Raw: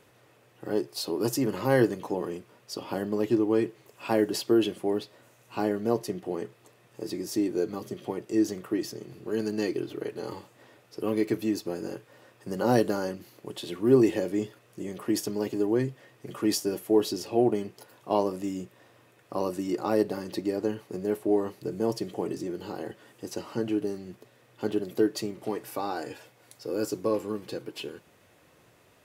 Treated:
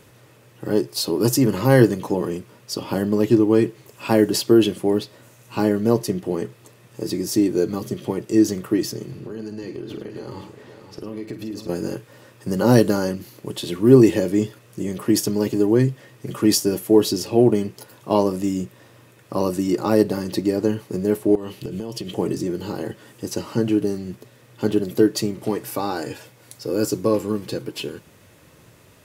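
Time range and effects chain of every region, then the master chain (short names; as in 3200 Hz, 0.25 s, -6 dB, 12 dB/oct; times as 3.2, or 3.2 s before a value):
9.11–11.69 high shelf 7200 Hz -10.5 dB + compressor 5:1, threshold -38 dBFS + tapped delay 49/106/521 ms -10.5/-12.5/-10 dB
21.35–22.15 bell 3000 Hz +12.5 dB 0.58 oct + compressor 12:1, threshold -34 dBFS
whole clip: tone controls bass +7 dB, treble +4 dB; notch 730 Hz, Q 12; gain +6.5 dB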